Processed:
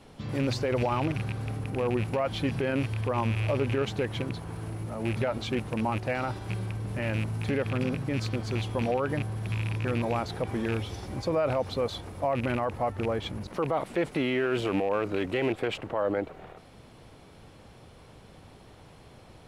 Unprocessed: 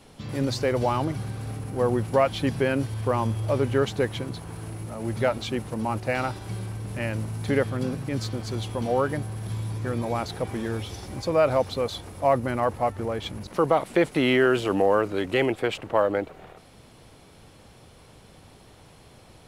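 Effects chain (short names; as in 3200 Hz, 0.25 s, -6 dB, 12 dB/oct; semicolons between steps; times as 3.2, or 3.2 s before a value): rattling part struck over -27 dBFS, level -23 dBFS; high shelf 4600 Hz -8 dB; limiter -18.5 dBFS, peak gain reduction 9.5 dB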